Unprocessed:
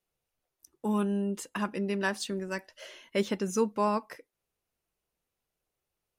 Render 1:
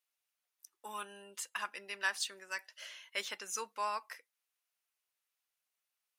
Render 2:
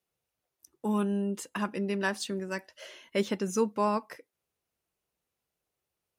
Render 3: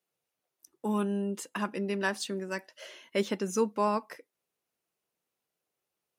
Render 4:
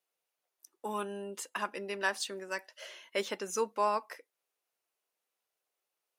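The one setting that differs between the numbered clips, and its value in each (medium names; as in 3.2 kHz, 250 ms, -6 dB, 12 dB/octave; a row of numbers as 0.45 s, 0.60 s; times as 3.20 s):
high-pass, cutoff frequency: 1.3 kHz, 58 Hz, 170 Hz, 510 Hz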